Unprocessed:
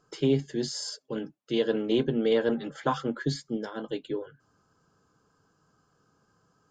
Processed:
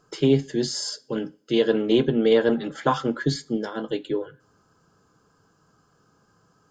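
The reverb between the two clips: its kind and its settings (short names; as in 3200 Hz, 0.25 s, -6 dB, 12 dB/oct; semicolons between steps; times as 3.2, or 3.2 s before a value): two-slope reverb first 0.38 s, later 1.6 s, from -26 dB, DRR 15.5 dB; gain +5.5 dB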